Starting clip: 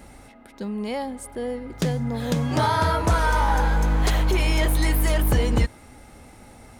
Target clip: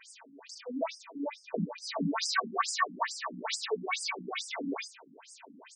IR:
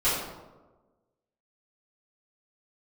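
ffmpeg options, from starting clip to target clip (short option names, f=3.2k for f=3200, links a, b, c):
-af "acompressor=threshold=-21dB:ratio=6,bass=f=250:g=-8,treble=f=4k:g=9,aecho=1:1:5.3:0.97,bandreject=f=51.52:t=h:w=4,bandreject=f=103.04:t=h:w=4,bandreject=f=154.56:t=h:w=4,bandreject=f=206.08:t=h:w=4,bandreject=f=257.6:t=h:w=4,bandreject=f=309.12:t=h:w=4,bandreject=f=360.64:t=h:w=4,bandreject=f=412.16:t=h:w=4,bandreject=f=463.68:t=h:w=4,bandreject=f=515.2:t=h:w=4,bandreject=f=566.72:t=h:w=4,bandreject=f=618.24:t=h:w=4,bandreject=f=669.76:t=h:w=4,asetrate=52038,aresample=44100,aecho=1:1:39|78:0.501|0.473,afftfilt=real='re*between(b*sr/1024,210*pow(6900/210,0.5+0.5*sin(2*PI*2.3*pts/sr))/1.41,210*pow(6900/210,0.5+0.5*sin(2*PI*2.3*pts/sr))*1.41)':imag='im*between(b*sr/1024,210*pow(6900/210,0.5+0.5*sin(2*PI*2.3*pts/sr))/1.41,210*pow(6900/210,0.5+0.5*sin(2*PI*2.3*pts/sr))*1.41)':win_size=1024:overlap=0.75"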